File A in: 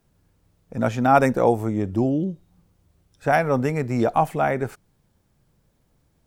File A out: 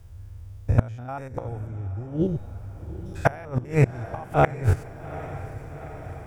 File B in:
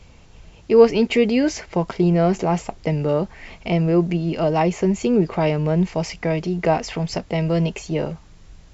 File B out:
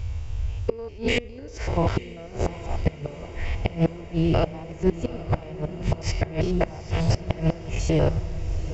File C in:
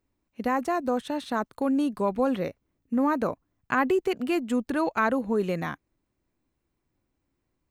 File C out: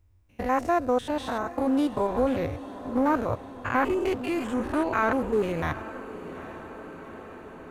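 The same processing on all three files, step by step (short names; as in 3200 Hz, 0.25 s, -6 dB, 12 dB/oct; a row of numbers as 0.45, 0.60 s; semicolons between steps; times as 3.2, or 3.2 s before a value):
stepped spectrum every 0.1 s; resonant low shelf 130 Hz +12 dB, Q 3; notch 4200 Hz, Q 15; wow and flutter 16 cents; flipped gate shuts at -14 dBFS, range -26 dB; diffused feedback echo 0.82 s, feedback 70%, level -14.5 dB; Doppler distortion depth 0.16 ms; match loudness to -27 LUFS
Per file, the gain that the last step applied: +9.5, +5.0, +4.5 dB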